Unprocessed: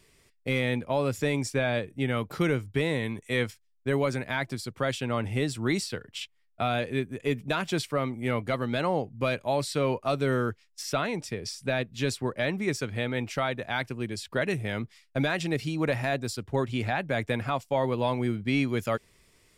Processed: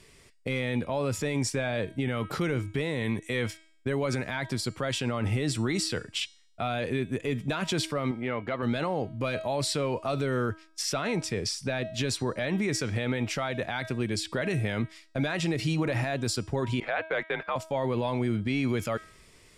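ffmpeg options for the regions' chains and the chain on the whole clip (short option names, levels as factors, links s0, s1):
-filter_complex "[0:a]asettb=1/sr,asplit=3[s0][s1][s2];[s0]atrim=end=8.114[s3];[s1]atrim=start=8.11:end=8.63,asetpts=PTS-STARTPTS,afade=t=in:d=0.004:c=qsin,afade=t=out:st=0.516:d=0.004:c=qsin,lowpass=2800,acompressor=threshold=0.0316:ratio=3:attack=3.2:release=140:knee=1:detection=peak,lowshelf=f=180:g=-11[s4];[s2]atrim=start=8.626[s5];[s3][s4]acrossfade=d=0.004:c1=hsin:c2=qsin[s6];[s6][s5]acrossfade=d=0.004:c1=qsin:c2=hsin,asettb=1/sr,asplit=3[s7][s8][s9];[s7]atrim=end=16.804[s10];[s8]atrim=start=16.8:end=17.56,asetpts=PTS-STARTPTS,afade=t=in:d=0.004:c=qsin,afade=t=out:st=0.756:d=0.004:c=qsin,agate=range=0.0631:threshold=0.0251:ratio=16:release=100:detection=peak,highpass=580,lowpass=3000,afreqshift=-85[s11];[s9]atrim=start=17.556[s12];[s10][s11]acrossfade=d=0.004:c1=hsin:c2=qsin[s13];[s13][s12]acrossfade=d=0.004:c1=qsin:c2=hsin,lowpass=11000,bandreject=f=319.8:t=h:w=4,bandreject=f=639.6:t=h:w=4,bandreject=f=959.4:t=h:w=4,bandreject=f=1279.2:t=h:w=4,bandreject=f=1599:t=h:w=4,bandreject=f=1918.8:t=h:w=4,bandreject=f=2238.6:t=h:w=4,bandreject=f=2558.4:t=h:w=4,bandreject=f=2878.2:t=h:w=4,bandreject=f=3198:t=h:w=4,bandreject=f=3517.8:t=h:w=4,bandreject=f=3837.6:t=h:w=4,bandreject=f=4157.4:t=h:w=4,bandreject=f=4477.2:t=h:w=4,bandreject=f=4797:t=h:w=4,bandreject=f=5116.8:t=h:w=4,bandreject=f=5436.6:t=h:w=4,bandreject=f=5756.4:t=h:w=4,bandreject=f=6076.2:t=h:w=4,bandreject=f=6396:t=h:w=4,bandreject=f=6715.8:t=h:w=4,bandreject=f=7035.6:t=h:w=4,bandreject=f=7355.4:t=h:w=4,bandreject=f=7675.2:t=h:w=4,bandreject=f=7995:t=h:w=4,bandreject=f=8314.8:t=h:w=4,bandreject=f=8634.6:t=h:w=4,bandreject=f=8954.4:t=h:w=4,bandreject=f=9274.2:t=h:w=4,bandreject=f=9594:t=h:w=4,bandreject=f=9913.8:t=h:w=4,alimiter=level_in=1.19:limit=0.0631:level=0:latency=1:release=34,volume=0.841,volume=2"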